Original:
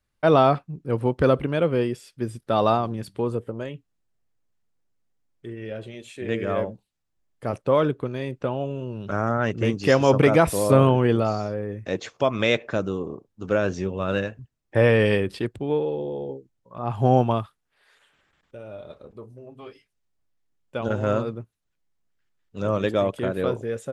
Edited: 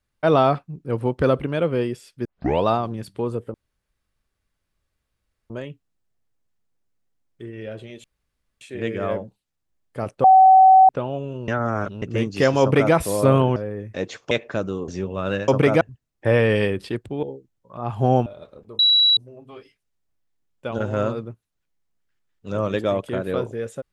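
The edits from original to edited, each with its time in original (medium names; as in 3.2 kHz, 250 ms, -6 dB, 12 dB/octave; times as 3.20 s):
2.25 s: tape start 0.40 s
3.54 s: insert room tone 1.96 s
6.08 s: insert room tone 0.57 s
7.71–8.36 s: bleep 759 Hz -7.5 dBFS
8.95–9.49 s: reverse
10.08–10.41 s: copy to 14.31 s
11.03–11.48 s: delete
12.23–12.50 s: delete
13.07–13.71 s: delete
15.73–16.24 s: delete
17.27–18.74 s: delete
19.27 s: add tone 3.91 kHz -12.5 dBFS 0.38 s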